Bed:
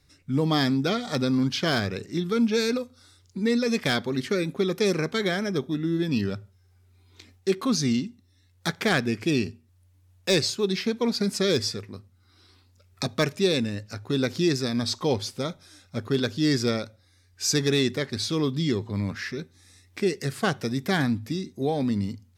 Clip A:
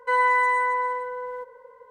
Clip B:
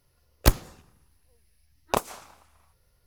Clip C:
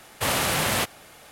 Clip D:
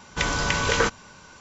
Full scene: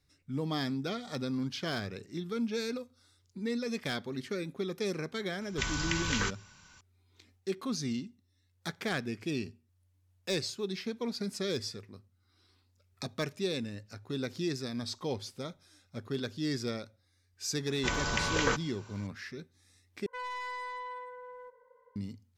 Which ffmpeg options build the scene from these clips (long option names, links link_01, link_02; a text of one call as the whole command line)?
ffmpeg -i bed.wav -i cue0.wav -i cue1.wav -i cue2.wav -i cue3.wav -filter_complex "[4:a]asplit=2[link_01][link_02];[0:a]volume=-10.5dB[link_03];[link_01]equalizer=frequency=510:width_type=o:width=2:gain=-13[link_04];[1:a]asoftclip=type=tanh:threshold=-21.5dB[link_05];[link_03]asplit=2[link_06][link_07];[link_06]atrim=end=20.064[link_08];[link_05]atrim=end=1.9,asetpts=PTS-STARTPTS,volume=-14dB[link_09];[link_07]atrim=start=21.956[link_10];[link_04]atrim=end=1.4,asetpts=PTS-STARTPTS,volume=-6.5dB,afade=type=in:duration=0.004:curve=hsin,afade=type=out:start_time=1.396:duration=0.004:curve=hsin,adelay=238581S[link_11];[link_02]atrim=end=1.4,asetpts=PTS-STARTPTS,volume=-7.5dB,afade=type=in:duration=0.004:curve=hsin,afade=type=out:start_time=1.396:duration=0.004:curve=hsin,adelay=17670[link_12];[link_08][link_09]acrossfade=duration=0.004:curve1=hsin:curve2=hsin[link_13];[link_13][link_10]acrossfade=duration=0.004:curve1=hsin:curve2=hsin[link_14];[link_14][link_11][link_12]amix=inputs=3:normalize=0" out.wav